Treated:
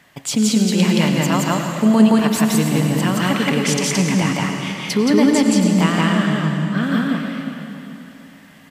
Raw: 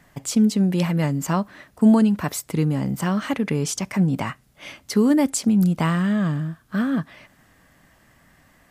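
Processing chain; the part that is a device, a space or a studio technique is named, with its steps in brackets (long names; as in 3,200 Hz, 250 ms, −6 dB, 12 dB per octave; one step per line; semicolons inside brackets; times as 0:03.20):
stadium PA (high-pass filter 180 Hz 6 dB per octave; parametric band 3,100 Hz +7.5 dB 1.2 octaves; loudspeakers that aren't time-aligned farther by 59 metres 0 dB, 96 metres −12 dB; convolution reverb RT60 3.2 s, pre-delay 82 ms, DRR 4.5 dB)
0:04.97–0:06.83: high-shelf EQ 6,800 Hz −9 dB
level +2 dB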